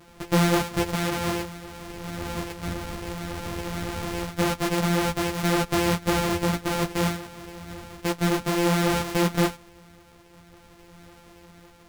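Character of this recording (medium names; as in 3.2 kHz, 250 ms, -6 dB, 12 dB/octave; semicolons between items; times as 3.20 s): a buzz of ramps at a fixed pitch in blocks of 256 samples; tremolo triangle 0.56 Hz, depth 35%; a shimmering, thickened sound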